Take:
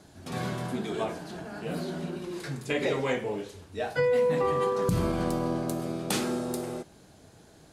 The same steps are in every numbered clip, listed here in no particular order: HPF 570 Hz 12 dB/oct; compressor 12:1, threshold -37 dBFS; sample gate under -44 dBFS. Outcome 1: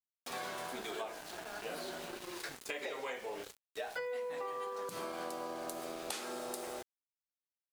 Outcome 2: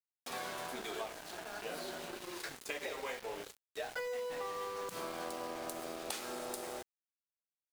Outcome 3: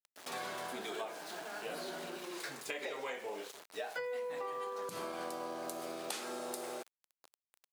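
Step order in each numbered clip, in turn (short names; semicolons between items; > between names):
HPF > sample gate > compressor; HPF > compressor > sample gate; sample gate > HPF > compressor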